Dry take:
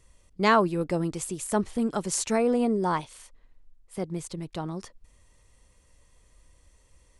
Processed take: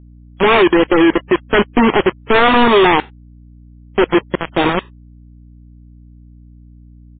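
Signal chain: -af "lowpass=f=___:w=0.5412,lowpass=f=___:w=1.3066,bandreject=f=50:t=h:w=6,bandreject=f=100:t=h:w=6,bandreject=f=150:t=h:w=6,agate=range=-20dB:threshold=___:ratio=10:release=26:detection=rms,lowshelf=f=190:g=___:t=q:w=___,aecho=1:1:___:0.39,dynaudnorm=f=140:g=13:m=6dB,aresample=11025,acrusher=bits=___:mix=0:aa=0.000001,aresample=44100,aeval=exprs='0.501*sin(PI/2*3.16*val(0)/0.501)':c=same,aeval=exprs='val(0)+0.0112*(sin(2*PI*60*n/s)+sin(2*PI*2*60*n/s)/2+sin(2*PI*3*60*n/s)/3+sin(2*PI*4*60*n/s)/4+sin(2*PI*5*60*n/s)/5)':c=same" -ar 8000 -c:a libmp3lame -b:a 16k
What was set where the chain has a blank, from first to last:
1300, 1300, -49dB, -9, 3, 2.5, 3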